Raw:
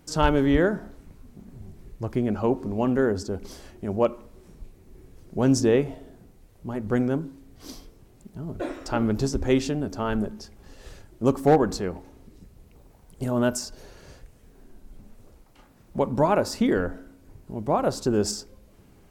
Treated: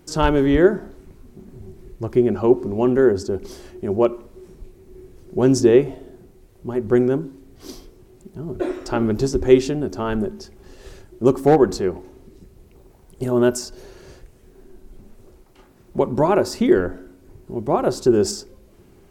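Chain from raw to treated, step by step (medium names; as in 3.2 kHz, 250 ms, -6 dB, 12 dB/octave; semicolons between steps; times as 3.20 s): peaking EQ 370 Hz +12.5 dB 0.2 oct; trim +2.5 dB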